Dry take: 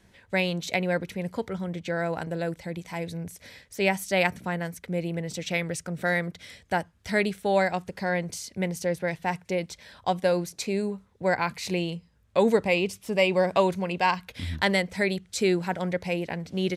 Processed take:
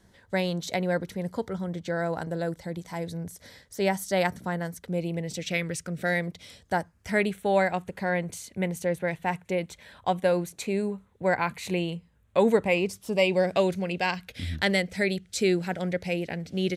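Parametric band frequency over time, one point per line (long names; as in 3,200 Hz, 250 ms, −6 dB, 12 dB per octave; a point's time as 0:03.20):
parametric band −10.5 dB 0.48 octaves
0:04.77 2,500 Hz
0:05.73 680 Hz
0:07.27 5,100 Hz
0:12.64 5,100 Hz
0:13.43 1,000 Hz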